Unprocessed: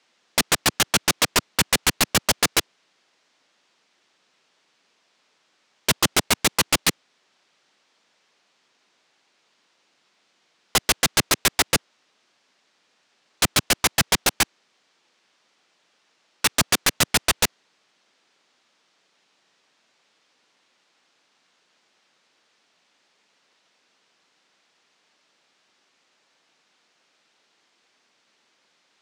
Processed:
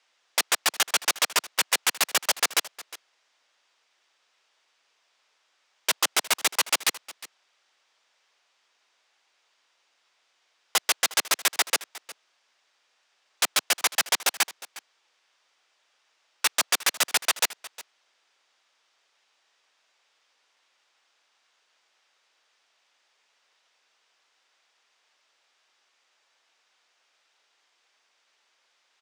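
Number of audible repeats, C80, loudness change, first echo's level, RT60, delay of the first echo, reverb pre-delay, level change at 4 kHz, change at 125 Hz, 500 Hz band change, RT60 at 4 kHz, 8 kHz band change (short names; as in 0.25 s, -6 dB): 1, none, -3.5 dB, -18.5 dB, none, 0.359 s, none, -3.5 dB, under -25 dB, -7.5 dB, none, -3.0 dB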